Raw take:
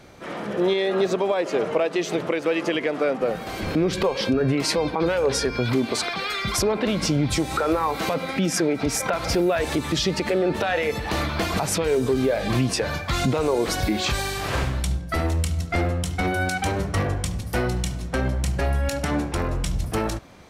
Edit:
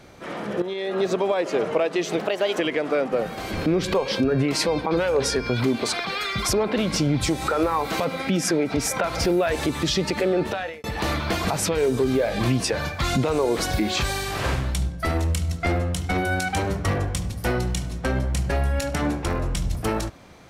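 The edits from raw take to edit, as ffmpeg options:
ffmpeg -i in.wav -filter_complex "[0:a]asplit=5[link_01][link_02][link_03][link_04][link_05];[link_01]atrim=end=0.62,asetpts=PTS-STARTPTS,afade=type=out:start_time=0.616:duration=0.004:curve=hsin:silence=0.237137[link_06];[link_02]atrim=start=0.62:end=2.194,asetpts=PTS-STARTPTS,afade=type=in:duration=0.52:silence=0.237137[link_07];[link_03]atrim=start=2.19:end=2.68,asetpts=PTS-STARTPTS,asetrate=54243,aresample=44100,atrim=end_sample=17568,asetpts=PTS-STARTPTS[link_08];[link_04]atrim=start=2.676:end=10.93,asetpts=PTS-STARTPTS,afade=type=out:start_time=7.814:duration=0.44[link_09];[link_05]atrim=start=10.93,asetpts=PTS-STARTPTS,afade=type=in:duration=0.004:curve=hsin[link_10];[link_06][link_07]concat=n=2:v=0:a=1[link_11];[link_11][link_08]acrossfade=duration=0.004:curve1=hsin:curve2=hsin[link_12];[link_09][link_10]concat=n=2:v=0:a=1[link_13];[link_12][link_13]acrossfade=duration=0.004:curve1=hsin:curve2=hsin" out.wav

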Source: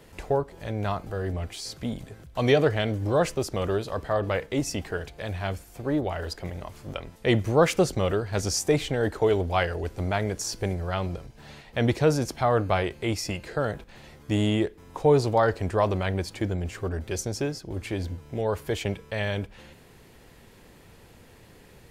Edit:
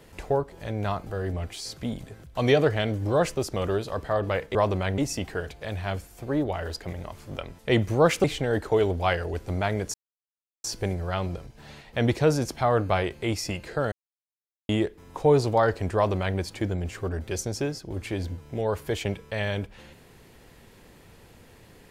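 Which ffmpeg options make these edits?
ffmpeg -i in.wav -filter_complex "[0:a]asplit=7[link_01][link_02][link_03][link_04][link_05][link_06][link_07];[link_01]atrim=end=4.552[link_08];[link_02]atrim=start=15.748:end=16.182[link_09];[link_03]atrim=start=4.548:end=7.812[link_10];[link_04]atrim=start=8.738:end=10.44,asetpts=PTS-STARTPTS,afade=type=out:start_time=1.698:duration=0.004:curve=hsin,apad=pad_dur=0.7[link_11];[link_05]atrim=start=10.44:end=13.72,asetpts=PTS-STARTPTS,afade=type=in:duration=0.004:curve=hsin,afade=type=out:start_time=3.276:duration=0.004:curve=hsin[link_12];[link_06]atrim=start=13.72:end=14.49,asetpts=PTS-STARTPTS,volume=0[link_13];[link_07]atrim=start=14.49,asetpts=PTS-STARTPTS,afade=type=in:duration=0.004:curve=hsin[link_14];[link_08][link_09]acrossfade=duration=0.004:curve1=hsin:curve2=hsin[link_15];[link_15][link_10]acrossfade=duration=0.004:curve1=hsin:curve2=hsin[link_16];[link_11][link_12][link_13][link_14]concat=n=4:v=0:a=1[link_17];[link_16][link_17]acrossfade=duration=0.004:curve1=hsin:curve2=hsin" out.wav

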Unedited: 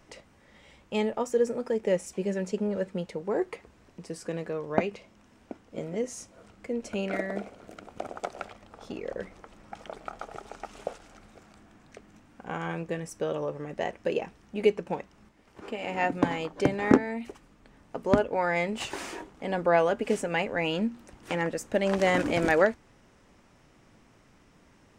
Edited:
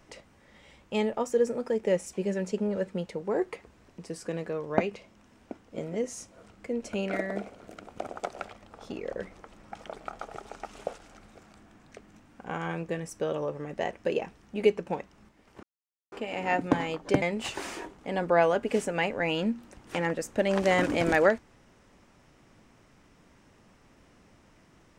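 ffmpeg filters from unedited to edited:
ffmpeg -i in.wav -filter_complex "[0:a]asplit=3[link_01][link_02][link_03];[link_01]atrim=end=15.63,asetpts=PTS-STARTPTS,afade=type=out:start_time=15.626:duration=0.004:curve=hsin,apad=pad_dur=0.49[link_04];[link_02]atrim=start=15.63:end=16.732,asetpts=PTS-STARTPTS,afade=type=in:duration=0.004:curve=hsin[link_05];[link_03]atrim=start=18.578[link_06];[link_04][link_05]concat=n=2:v=0:a=1[link_07];[link_07][link_06]acrossfade=duration=0.004:curve1=hsin:curve2=hsin" out.wav

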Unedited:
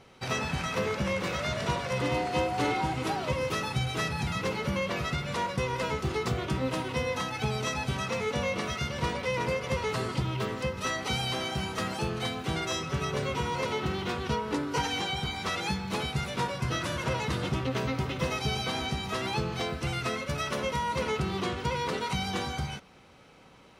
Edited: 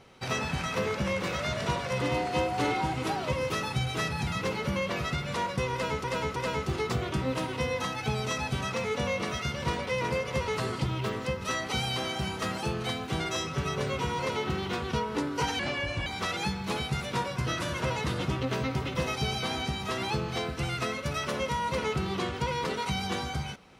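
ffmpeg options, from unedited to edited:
ffmpeg -i in.wav -filter_complex "[0:a]asplit=5[link_01][link_02][link_03][link_04][link_05];[link_01]atrim=end=6.042[link_06];[link_02]atrim=start=5.718:end=6.042[link_07];[link_03]atrim=start=5.718:end=14.954[link_08];[link_04]atrim=start=14.95:end=15.3,asetpts=PTS-STARTPTS,asetrate=32634,aresample=44100,atrim=end_sample=20858,asetpts=PTS-STARTPTS[link_09];[link_05]atrim=start=15.296[link_10];[link_06][link_07]acrossfade=duration=0.004:curve1=hsin:curve2=hsin[link_11];[link_11][link_08]acrossfade=duration=0.004:curve1=hsin:curve2=hsin[link_12];[link_12][link_09]acrossfade=duration=0.004:curve1=hsin:curve2=hsin[link_13];[link_13][link_10]acrossfade=duration=0.004:curve1=hsin:curve2=hsin" out.wav

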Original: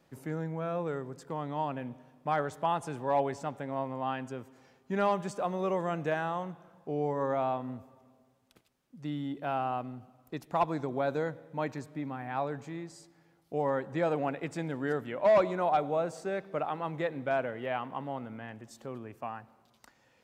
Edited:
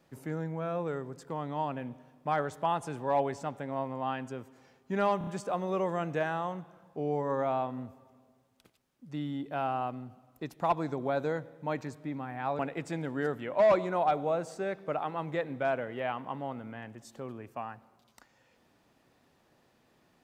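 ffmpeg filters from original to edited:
ffmpeg -i in.wav -filter_complex "[0:a]asplit=5[link_01][link_02][link_03][link_04][link_05];[link_01]atrim=end=5.212[link_06];[link_02]atrim=start=5.178:end=5.212[link_07];[link_03]atrim=start=5.178:end=5.212[link_08];[link_04]atrim=start=5.178:end=12.502[link_09];[link_05]atrim=start=14.248[link_10];[link_06][link_07]acrossfade=duration=0.004:curve1=hsin:curve2=hsin[link_11];[link_11][link_08]acrossfade=duration=0.004:curve1=hsin:curve2=hsin[link_12];[link_12][link_09]acrossfade=duration=0.004:curve1=hsin:curve2=hsin[link_13];[link_13][link_10]acrossfade=duration=0.004:curve1=hsin:curve2=hsin" out.wav

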